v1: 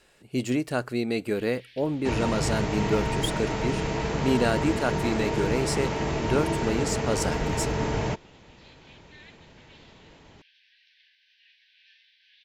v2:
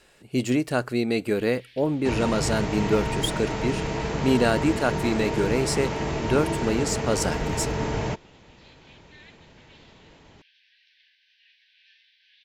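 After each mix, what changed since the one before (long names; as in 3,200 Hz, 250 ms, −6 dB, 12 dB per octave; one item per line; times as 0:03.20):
speech +3.0 dB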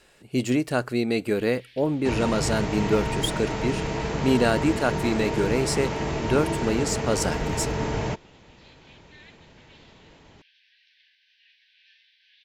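nothing changed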